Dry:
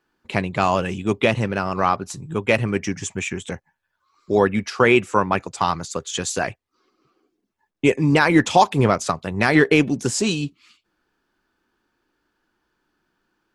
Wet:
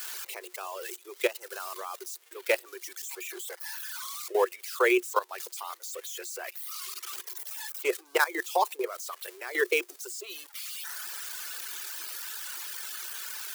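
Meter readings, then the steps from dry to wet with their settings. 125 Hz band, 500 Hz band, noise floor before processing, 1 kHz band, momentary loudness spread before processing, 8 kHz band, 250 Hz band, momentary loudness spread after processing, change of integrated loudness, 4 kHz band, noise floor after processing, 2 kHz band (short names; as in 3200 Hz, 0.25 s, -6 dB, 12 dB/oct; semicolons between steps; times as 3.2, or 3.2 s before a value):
under -40 dB, -9.5 dB, -76 dBFS, -12.0 dB, 12 LU, -5.0 dB, -19.5 dB, 12 LU, -12.0 dB, -8.0 dB, -56 dBFS, -8.5 dB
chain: switching spikes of -12.5 dBFS; reverb removal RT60 1.6 s; level quantiser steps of 16 dB; rippled Chebyshev high-pass 350 Hz, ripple 3 dB; gain -4 dB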